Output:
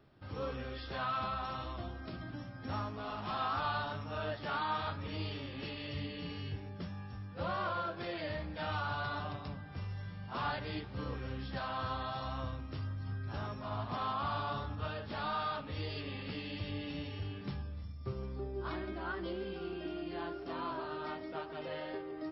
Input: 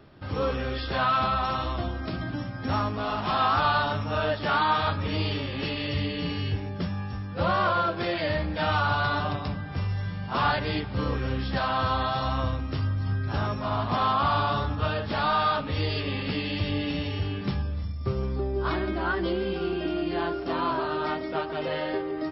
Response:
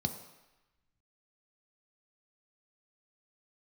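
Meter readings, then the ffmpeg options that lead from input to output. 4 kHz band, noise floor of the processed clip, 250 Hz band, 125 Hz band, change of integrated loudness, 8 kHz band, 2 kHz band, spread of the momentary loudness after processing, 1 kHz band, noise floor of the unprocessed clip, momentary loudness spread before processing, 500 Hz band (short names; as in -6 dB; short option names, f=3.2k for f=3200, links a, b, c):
-12.0 dB, -46 dBFS, -12.0 dB, -12.0 dB, -12.0 dB, n/a, -12.0 dB, 7 LU, -12.0 dB, -34 dBFS, 7 LU, -12.0 dB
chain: -af "flanger=delay=6.9:depth=2.8:regen=86:speed=2:shape=sinusoidal,volume=-7.5dB"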